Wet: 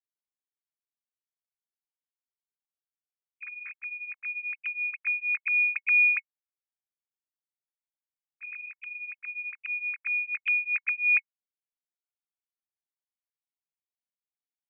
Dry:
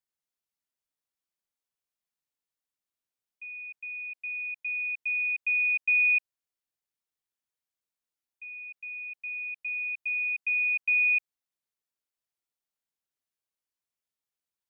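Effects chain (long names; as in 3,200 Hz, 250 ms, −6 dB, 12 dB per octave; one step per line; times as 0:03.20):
three sine waves on the formant tracks
hollow resonant body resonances 2,200 Hz, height 8 dB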